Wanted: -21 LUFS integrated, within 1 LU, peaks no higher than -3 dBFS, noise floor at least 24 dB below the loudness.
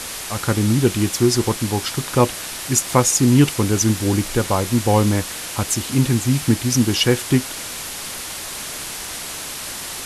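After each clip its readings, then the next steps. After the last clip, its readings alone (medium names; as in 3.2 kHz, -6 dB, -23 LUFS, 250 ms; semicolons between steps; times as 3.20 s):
noise floor -31 dBFS; noise floor target -44 dBFS; loudness -19.5 LUFS; peak level -1.5 dBFS; loudness target -21.0 LUFS
-> noise reduction 13 dB, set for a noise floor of -31 dBFS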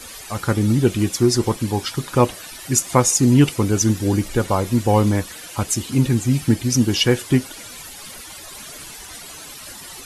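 noise floor -38 dBFS; noise floor target -43 dBFS
-> noise reduction 6 dB, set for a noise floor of -38 dBFS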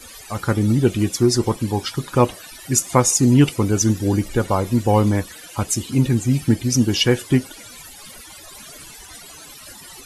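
noise floor -41 dBFS; noise floor target -43 dBFS
-> noise reduction 6 dB, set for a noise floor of -41 dBFS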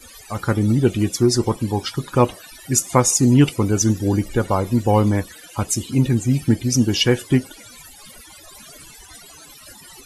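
noise floor -44 dBFS; loudness -19.0 LUFS; peak level -1.5 dBFS; loudness target -21.0 LUFS
-> trim -2 dB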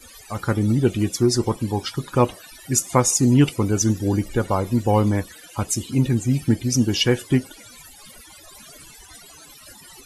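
loudness -21.0 LUFS; peak level -3.5 dBFS; noise floor -46 dBFS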